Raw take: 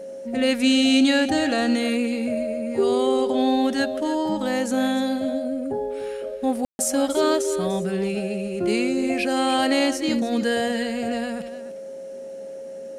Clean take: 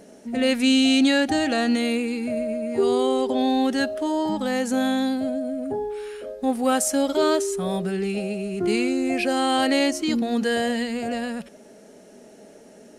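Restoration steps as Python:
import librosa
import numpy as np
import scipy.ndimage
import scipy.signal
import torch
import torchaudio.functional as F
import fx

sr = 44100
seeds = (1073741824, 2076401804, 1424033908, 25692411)

y = fx.notch(x, sr, hz=540.0, q=30.0)
y = fx.fix_ambience(y, sr, seeds[0], print_start_s=11.7, print_end_s=12.2, start_s=6.65, end_s=6.79)
y = fx.fix_echo_inverse(y, sr, delay_ms=296, level_db=-13.0)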